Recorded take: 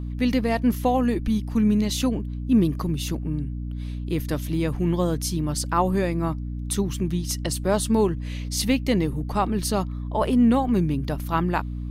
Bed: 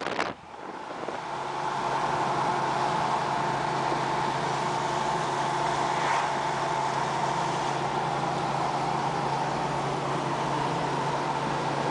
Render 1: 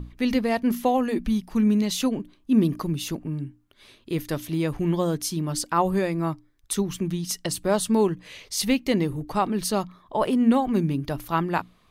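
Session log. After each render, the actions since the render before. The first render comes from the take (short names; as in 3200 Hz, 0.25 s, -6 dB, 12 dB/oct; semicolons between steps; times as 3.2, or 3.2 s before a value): notches 60/120/180/240/300 Hz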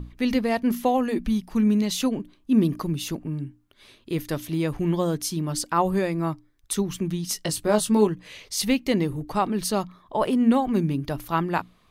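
7.27–8.07 doubler 19 ms -5.5 dB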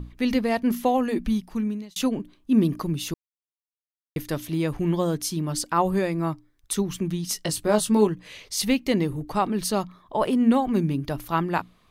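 1.32–1.96 fade out; 3.14–4.16 mute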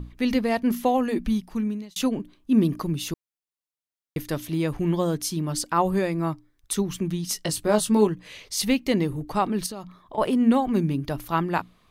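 9.66–10.18 compressor 10:1, threshold -31 dBFS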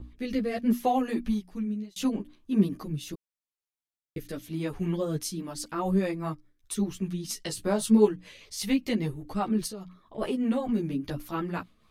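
rotary speaker horn 0.75 Hz, later 5 Hz, at 4.58; ensemble effect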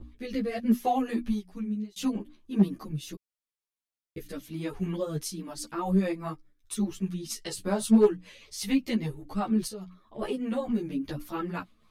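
hard clip -15 dBFS, distortion -20 dB; ensemble effect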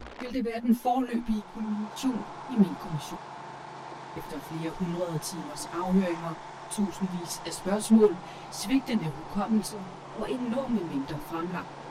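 add bed -14.5 dB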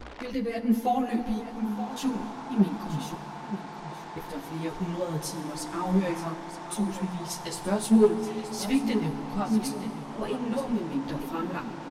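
echo 0.926 s -12 dB; FDN reverb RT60 2.5 s, low-frequency decay 1.45×, high-frequency decay 0.65×, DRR 10.5 dB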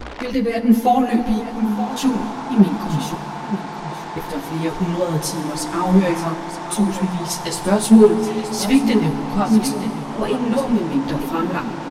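gain +10.5 dB; limiter -2 dBFS, peak gain reduction 2.5 dB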